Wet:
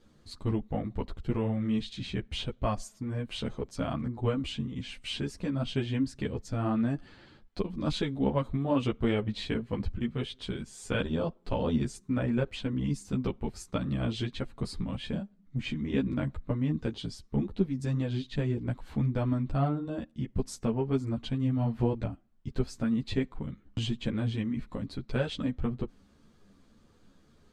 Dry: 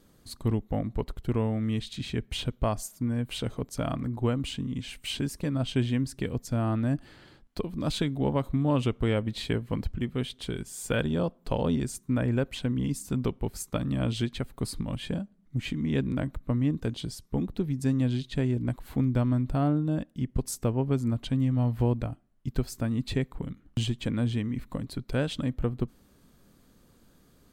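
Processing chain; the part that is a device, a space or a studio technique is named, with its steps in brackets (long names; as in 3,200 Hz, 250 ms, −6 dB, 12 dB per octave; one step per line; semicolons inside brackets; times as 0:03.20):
string-machine ensemble chorus (string-ensemble chorus; low-pass filter 6,100 Hz 12 dB per octave)
level +1.5 dB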